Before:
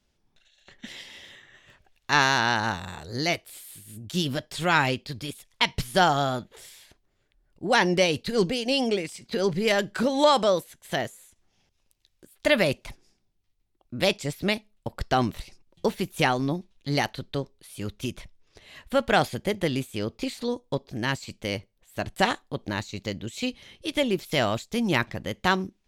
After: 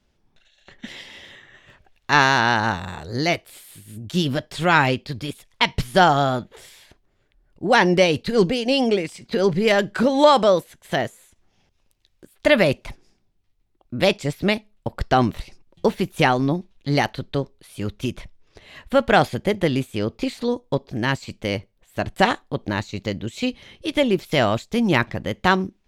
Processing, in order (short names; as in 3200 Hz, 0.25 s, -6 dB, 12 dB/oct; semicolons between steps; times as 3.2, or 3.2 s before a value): high shelf 3900 Hz -8 dB; gain +6 dB